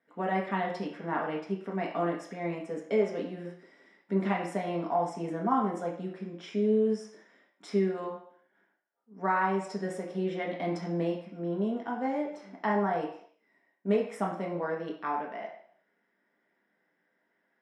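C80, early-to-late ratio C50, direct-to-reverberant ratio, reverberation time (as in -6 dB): 9.5 dB, 7.0 dB, -2.0 dB, 0.60 s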